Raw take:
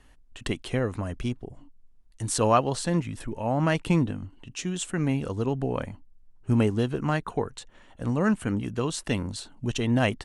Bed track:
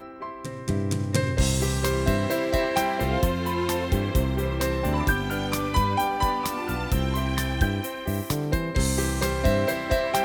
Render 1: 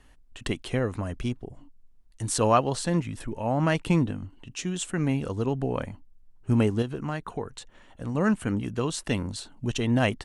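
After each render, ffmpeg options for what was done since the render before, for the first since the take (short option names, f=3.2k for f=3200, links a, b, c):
-filter_complex "[0:a]asettb=1/sr,asplit=3[a][b][c];[a]atrim=end=6.824[d];[b]atrim=start=6.82:end=8.15,asetpts=PTS-STARTPTS,afade=t=in:d=0.004:c=qsin,afade=t=out:st=1.326:d=0.004:c=qsin,acompressor=threshold=-35dB:ratio=1.5:attack=3.2:release=140:knee=1:detection=peak[e];[c]atrim=start=8.146[f];[d][e]acrossfade=d=0.004:c1=hsin:c2=qsin[g];[g][f]acrossfade=d=0.004:c1=qsin:c2=hsin"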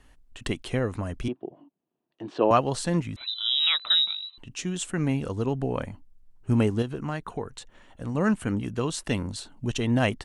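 -filter_complex "[0:a]asettb=1/sr,asplit=3[a][b][c];[a]atrim=end=1.284[d];[b]atrim=start=1.28:end=2.51,asetpts=PTS-STARTPTS,afade=t=in:d=0.004:c=qsin,afade=t=out:st=1.226:d=0.004:c=qsin,highpass=f=180:w=0.5412,highpass=f=180:w=1.3066,equalizer=f=220:t=q:w=4:g=-4,equalizer=f=350:t=q:w=4:g=8,equalizer=f=660:t=q:w=4:g=6,equalizer=f=1.4k:t=q:w=4:g=-5,equalizer=f=2.1k:t=q:w=4:g=-9,lowpass=f=3k:w=0.5412,lowpass=f=3k:w=1.3066[e];[c]atrim=start=2.506[f];[d][e]acrossfade=d=0.004:c1=hsin:c2=qsin[g];[g][f]acrossfade=d=0.004:c1=qsin:c2=hsin,asettb=1/sr,asplit=3[h][i][j];[h]atrim=end=3.164[k];[i]atrim=start=3.16:end=4.38,asetpts=PTS-STARTPTS,afade=t=in:d=0.004:c=qsin,afade=t=out:st=1.216:d=0.004:c=qsin,lowpass=f=3.4k:t=q:w=0.5098,lowpass=f=3.4k:t=q:w=0.6013,lowpass=f=3.4k:t=q:w=0.9,lowpass=f=3.4k:t=q:w=2.563,afreqshift=-4000[l];[j]atrim=start=4.376[m];[k][l]acrossfade=d=0.004:c1=hsin:c2=qsin[n];[n][m]acrossfade=d=0.004:c1=qsin:c2=hsin"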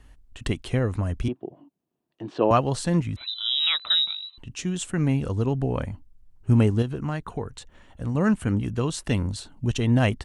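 -af "equalizer=f=63:w=0.53:g=9"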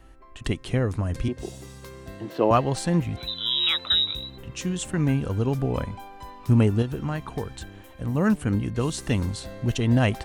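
-filter_complex "[1:a]volume=-18dB[a];[0:a][a]amix=inputs=2:normalize=0"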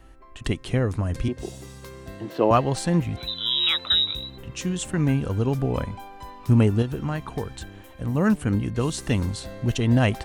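-af "volume=1dB"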